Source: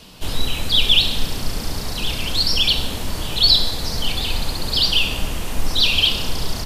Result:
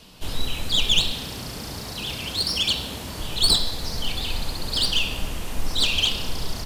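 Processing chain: tracing distortion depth 0.041 ms; 1.13–3.2 HPF 68 Hz; gain -5 dB

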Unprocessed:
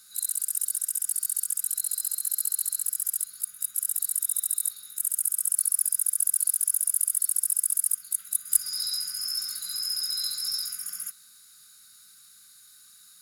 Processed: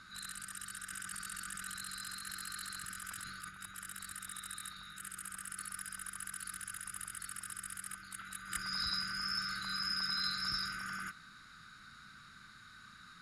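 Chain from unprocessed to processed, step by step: LPF 1400 Hz 12 dB/oct; 0.9–3.49 sustainer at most 22 dB/s; gain +16.5 dB

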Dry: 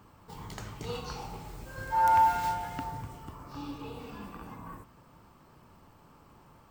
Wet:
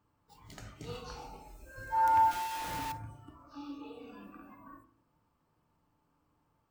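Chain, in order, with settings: 2.31–2.92 infinite clipping; spectral noise reduction 13 dB; FDN reverb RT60 0.57 s, low-frequency decay 1.55×, high-frequency decay 0.25×, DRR 8 dB; gain -6 dB

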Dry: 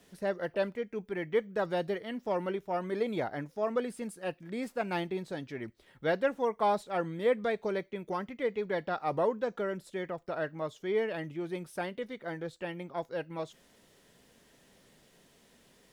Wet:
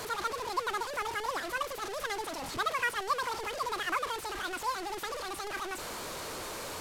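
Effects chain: delta modulation 32 kbps, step -30 dBFS; high shelf 3500 Hz -7.5 dB; speed mistake 33 rpm record played at 78 rpm; gain -2 dB

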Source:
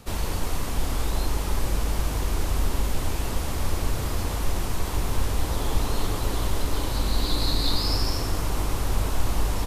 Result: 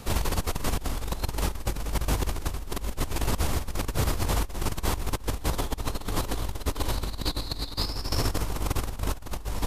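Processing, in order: negative-ratio compressor -27 dBFS, ratio -0.5

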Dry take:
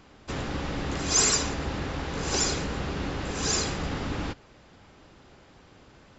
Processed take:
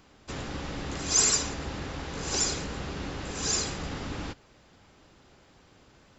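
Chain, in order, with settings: high shelf 5600 Hz +7.5 dB; gain -4.5 dB

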